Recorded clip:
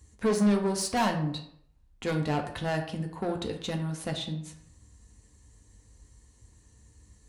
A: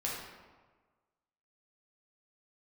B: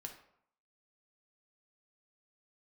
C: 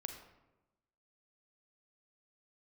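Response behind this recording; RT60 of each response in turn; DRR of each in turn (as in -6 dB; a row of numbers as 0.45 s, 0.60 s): B; 1.4 s, 0.70 s, 1.0 s; -5.0 dB, 2.5 dB, 5.0 dB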